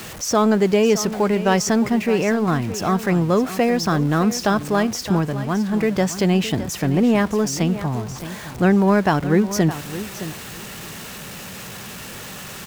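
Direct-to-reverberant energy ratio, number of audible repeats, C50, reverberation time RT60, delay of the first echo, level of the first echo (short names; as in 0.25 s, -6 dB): none, 2, none, none, 0.616 s, -13.0 dB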